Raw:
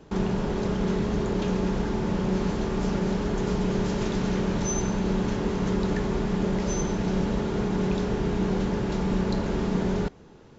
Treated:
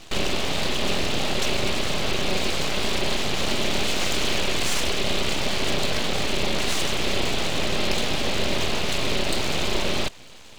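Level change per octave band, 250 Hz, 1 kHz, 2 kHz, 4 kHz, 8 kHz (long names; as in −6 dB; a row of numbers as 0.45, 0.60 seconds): −6.0 dB, +4.0 dB, +11.0 dB, +17.5 dB, can't be measured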